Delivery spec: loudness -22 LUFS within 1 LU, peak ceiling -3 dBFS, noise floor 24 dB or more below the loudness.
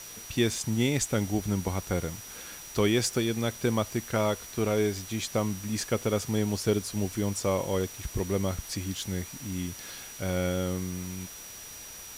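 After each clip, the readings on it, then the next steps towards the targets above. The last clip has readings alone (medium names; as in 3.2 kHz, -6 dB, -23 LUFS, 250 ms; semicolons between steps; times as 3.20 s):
steady tone 5.8 kHz; tone level -45 dBFS; noise floor -44 dBFS; noise floor target -54 dBFS; loudness -30.0 LUFS; peak level -13.5 dBFS; loudness target -22.0 LUFS
-> band-stop 5.8 kHz, Q 30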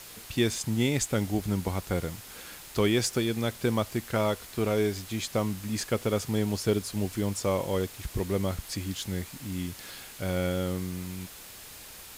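steady tone not found; noise floor -46 dBFS; noise floor target -54 dBFS
-> noise reduction 8 dB, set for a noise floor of -46 dBFS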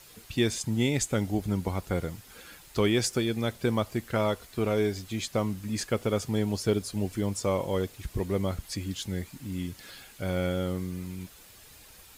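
noise floor -53 dBFS; noise floor target -54 dBFS
-> noise reduction 6 dB, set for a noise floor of -53 dBFS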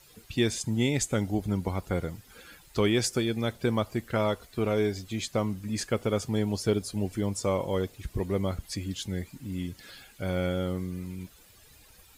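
noise floor -56 dBFS; loudness -30.0 LUFS; peak level -13.0 dBFS; loudness target -22.0 LUFS
-> trim +8 dB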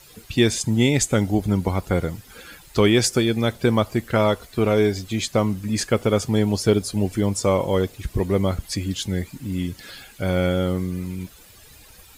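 loudness -22.0 LUFS; peak level -5.0 dBFS; noise floor -48 dBFS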